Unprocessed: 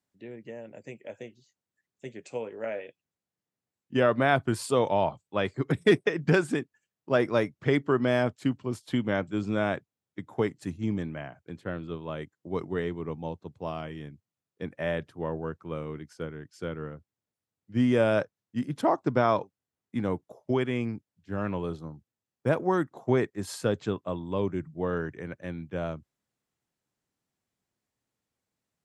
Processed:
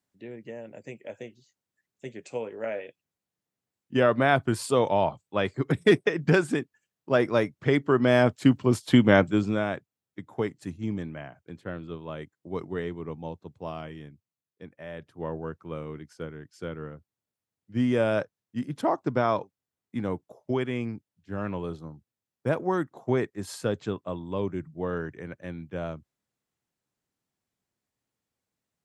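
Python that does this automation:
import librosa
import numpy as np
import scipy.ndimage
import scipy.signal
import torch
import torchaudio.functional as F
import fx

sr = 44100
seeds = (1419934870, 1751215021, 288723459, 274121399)

y = fx.gain(x, sr, db=fx.line((7.82, 1.5), (8.66, 9.5), (9.24, 9.5), (9.66, -1.5), (13.89, -1.5), (14.88, -11.0), (15.24, -1.0)))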